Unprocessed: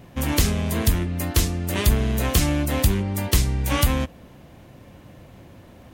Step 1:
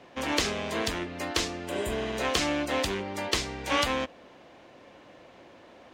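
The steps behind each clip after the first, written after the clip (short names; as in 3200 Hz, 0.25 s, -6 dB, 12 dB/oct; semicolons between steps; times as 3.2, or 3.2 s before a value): spectral repair 1.71–2.1, 770–6900 Hz after; three-band isolator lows -21 dB, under 300 Hz, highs -24 dB, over 6600 Hz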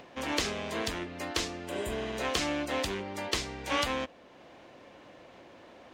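upward compressor, threshold -43 dBFS; gain -3.5 dB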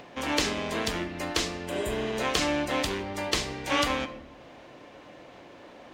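shoebox room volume 360 m³, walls mixed, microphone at 0.4 m; gain +3.5 dB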